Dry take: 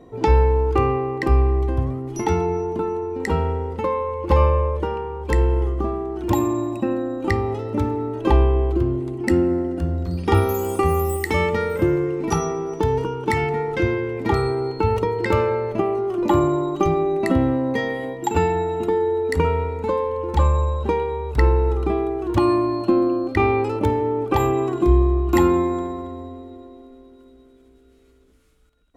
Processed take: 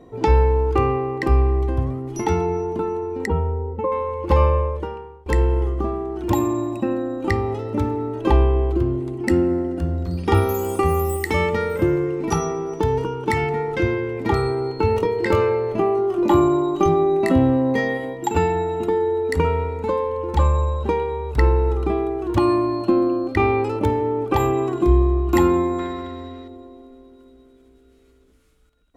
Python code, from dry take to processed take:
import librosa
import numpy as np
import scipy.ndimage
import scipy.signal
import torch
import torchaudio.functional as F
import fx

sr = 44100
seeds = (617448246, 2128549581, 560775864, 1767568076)

y = fx.spec_expand(x, sr, power=1.5, at=(3.26, 3.92))
y = fx.doubler(y, sr, ms=23.0, db=-7, at=(14.77, 17.98))
y = fx.band_shelf(y, sr, hz=2800.0, db=11.0, octaves=2.4, at=(25.79, 26.48))
y = fx.edit(y, sr, fx.fade_out_to(start_s=4.56, length_s=0.7, floor_db=-21.5), tone=tone)